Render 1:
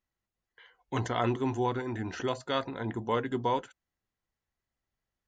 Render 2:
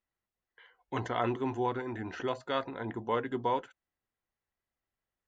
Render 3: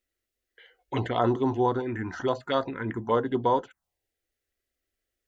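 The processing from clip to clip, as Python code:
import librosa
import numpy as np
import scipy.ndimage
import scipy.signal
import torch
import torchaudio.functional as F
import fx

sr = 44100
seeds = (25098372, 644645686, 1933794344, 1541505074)

y1 = fx.bass_treble(x, sr, bass_db=-5, treble_db=-10)
y1 = y1 * librosa.db_to_amplitude(-1.0)
y2 = fx.env_phaser(y1, sr, low_hz=160.0, high_hz=2400.0, full_db=-28.5)
y2 = y2 * librosa.db_to_amplitude(8.0)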